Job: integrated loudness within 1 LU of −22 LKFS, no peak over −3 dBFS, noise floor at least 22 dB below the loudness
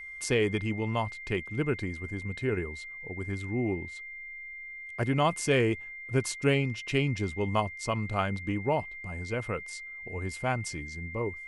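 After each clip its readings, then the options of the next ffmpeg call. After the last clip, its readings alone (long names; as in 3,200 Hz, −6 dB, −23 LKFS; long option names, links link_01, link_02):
interfering tone 2,100 Hz; level of the tone −40 dBFS; integrated loudness −31.0 LKFS; sample peak −12.5 dBFS; target loudness −22.0 LKFS
→ -af "bandreject=frequency=2100:width=30"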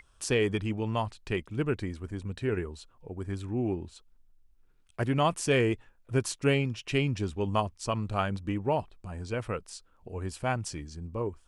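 interfering tone none found; integrated loudness −31.0 LKFS; sample peak −13.0 dBFS; target loudness −22.0 LKFS
→ -af "volume=9dB"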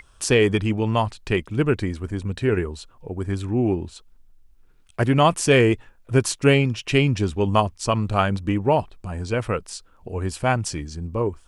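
integrated loudness −22.0 LKFS; sample peak −4.0 dBFS; background noise floor −54 dBFS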